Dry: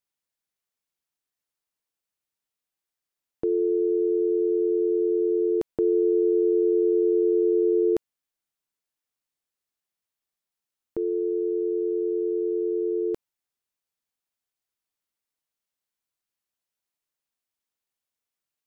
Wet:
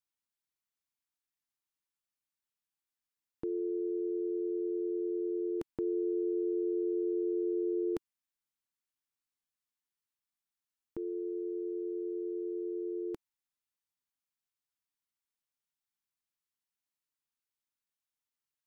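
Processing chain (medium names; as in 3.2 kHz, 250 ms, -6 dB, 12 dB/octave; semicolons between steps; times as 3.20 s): high-order bell 520 Hz -8 dB 1.1 oct; trim -6 dB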